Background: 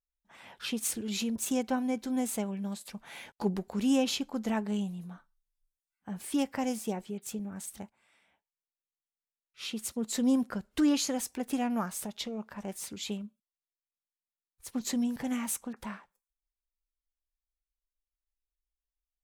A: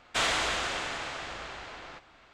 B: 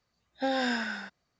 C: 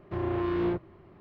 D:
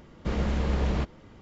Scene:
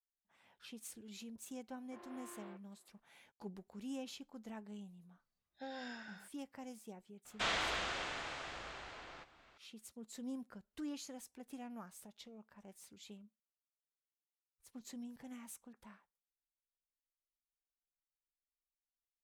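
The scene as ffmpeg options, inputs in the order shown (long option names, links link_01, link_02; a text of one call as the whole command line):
ffmpeg -i bed.wav -i cue0.wav -i cue1.wav -i cue2.wav -filter_complex "[0:a]volume=-18dB[link_01];[3:a]highpass=620[link_02];[1:a]acrossover=split=6400[link_03][link_04];[link_04]acompressor=threshold=-54dB:ratio=4:attack=1:release=60[link_05];[link_03][link_05]amix=inputs=2:normalize=0[link_06];[link_02]atrim=end=1.2,asetpts=PTS-STARTPTS,volume=-17.5dB,afade=type=in:duration=0.004:curve=hsin,afade=type=out:start_time=1.196:duration=0.004:curve=hsin,adelay=1800[link_07];[2:a]atrim=end=1.39,asetpts=PTS-STARTPTS,volume=-18dB,afade=type=in:duration=0.004:curve=hsin,afade=type=out:start_time=1.386:duration=0.004:curve=hsin,adelay=5190[link_08];[link_06]atrim=end=2.33,asetpts=PTS-STARTPTS,volume=-8dB,afade=type=in:duration=0.004:curve=hsin,afade=type=out:start_time=2.326:duration=0.004:curve=hsin,adelay=7250[link_09];[link_01][link_07][link_08][link_09]amix=inputs=4:normalize=0" out.wav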